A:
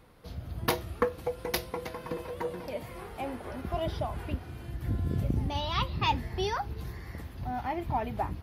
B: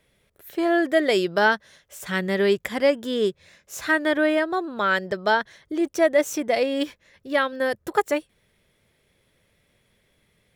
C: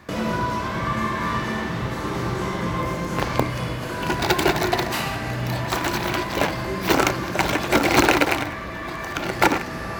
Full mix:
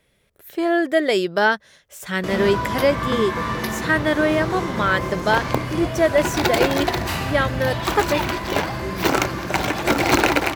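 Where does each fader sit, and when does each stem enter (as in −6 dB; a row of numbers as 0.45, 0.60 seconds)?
−0.5, +1.5, −0.5 decibels; 2.10, 0.00, 2.15 seconds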